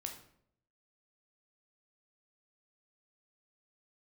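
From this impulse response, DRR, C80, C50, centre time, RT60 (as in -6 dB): 3.0 dB, 11.5 dB, 8.0 dB, 20 ms, 0.65 s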